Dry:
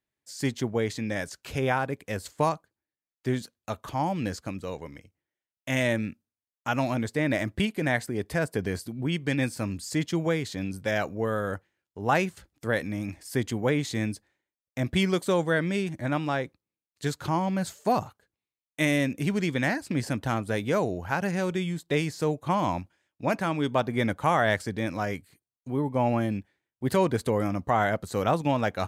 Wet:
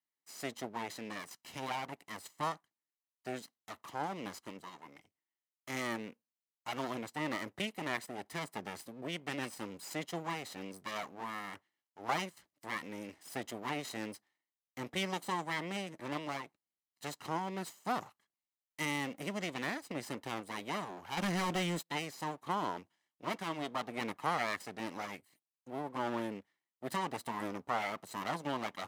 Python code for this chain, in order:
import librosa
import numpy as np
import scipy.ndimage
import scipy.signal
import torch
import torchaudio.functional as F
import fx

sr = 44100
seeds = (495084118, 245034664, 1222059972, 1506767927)

y = fx.lower_of_two(x, sr, delay_ms=0.99)
y = scipy.signal.sosfilt(scipy.signal.butter(2, 250.0, 'highpass', fs=sr, output='sos'), y)
y = fx.leveller(y, sr, passes=3, at=(21.17, 21.89))
y = y * librosa.db_to_amplitude(-7.0)